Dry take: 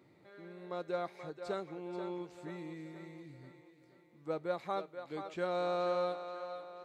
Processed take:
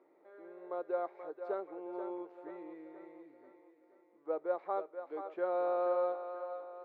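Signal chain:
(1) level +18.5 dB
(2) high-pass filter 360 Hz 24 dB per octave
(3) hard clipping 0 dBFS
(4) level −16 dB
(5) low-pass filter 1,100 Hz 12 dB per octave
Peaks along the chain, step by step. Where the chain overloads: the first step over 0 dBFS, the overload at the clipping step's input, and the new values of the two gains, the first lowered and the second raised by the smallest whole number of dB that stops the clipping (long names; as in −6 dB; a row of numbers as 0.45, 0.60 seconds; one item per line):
−6.0, −6.0, −6.0, −22.0, −23.0 dBFS
no step passes full scale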